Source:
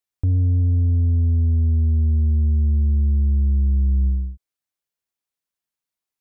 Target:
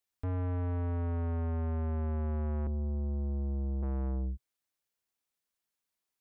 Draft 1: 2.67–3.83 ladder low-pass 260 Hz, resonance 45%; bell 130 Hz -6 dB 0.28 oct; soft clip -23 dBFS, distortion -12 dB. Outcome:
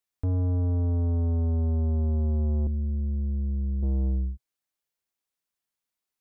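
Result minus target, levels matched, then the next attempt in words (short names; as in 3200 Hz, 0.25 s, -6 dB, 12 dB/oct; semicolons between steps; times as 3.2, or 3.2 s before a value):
soft clip: distortion -5 dB
2.67–3.83 ladder low-pass 260 Hz, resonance 45%; bell 130 Hz -6 dB 0.28 oct; soft clip -31.5 dBFS, distortion -7 dB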